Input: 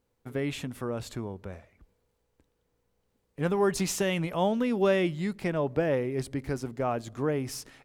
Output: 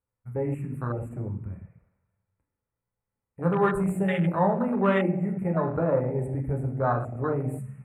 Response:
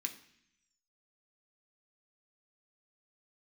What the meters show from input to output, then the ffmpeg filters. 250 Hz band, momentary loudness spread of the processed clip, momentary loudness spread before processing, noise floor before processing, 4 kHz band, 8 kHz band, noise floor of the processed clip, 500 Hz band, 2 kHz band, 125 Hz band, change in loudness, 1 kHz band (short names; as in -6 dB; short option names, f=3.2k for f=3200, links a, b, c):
+3.0 dB, 11 LU, 12 LU, -76 dBFS, -10.0 dB, under -15 dB, under -85 dBFS, +1.0 dB, +0.5 dB, +6.5 dB, +2.5 dB, +5.5 dB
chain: -filter_complex "[0:a]asuperstop=centerf=4600:order=12:qfactor=0.88[a];[1:a]atrim=start_sample=2205,asetrate=23814,aresample=44100[b];[a][b]afir=irnorm=-1:irlink=0,afwtdn=0.0282,volume=2.5dB"